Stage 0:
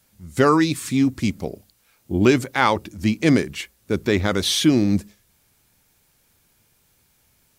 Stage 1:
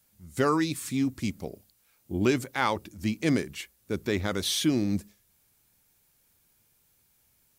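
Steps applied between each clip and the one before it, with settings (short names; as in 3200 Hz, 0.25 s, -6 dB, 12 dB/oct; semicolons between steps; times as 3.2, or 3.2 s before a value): high shelf 9000 Hz +7.5 dB; gain -8.5 dB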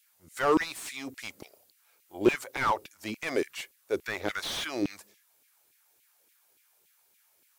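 resonant low shelf 130 Hz +9.5 dB, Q 1.5; LFO high-pass saw down 3.5 Hz 290–2700 Hz; slew limiter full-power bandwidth 91 Hz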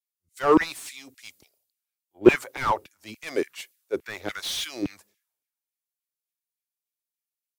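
three-band expander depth 100%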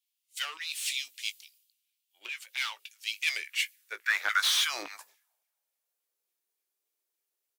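compressor 10:1, threshold -29 dBFS, peak gain reduction 21.5 dB; doubler 18 ms -11.5 dB; high-pass sweep 2900 Hz -> 390 Hz, 3.15–6.31; gain +5.5 dB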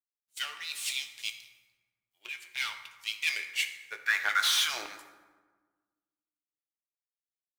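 G.711 law mismatch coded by A; on a send at -5.5 dB: reverb RT60 1.4 s, pre-delay 4 ms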